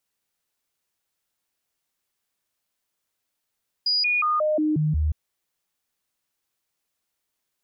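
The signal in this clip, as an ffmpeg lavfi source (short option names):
-f lavfi -i "aevalsrc='0.112*clip(min(mod(t,0.18),0.18-mod(t,0.18))/0.005,0,1)*sin(2*PI*4900*pow(2,-floor(t/0.18)/1)*mod(t,0.18))':d=1.26:s=44100"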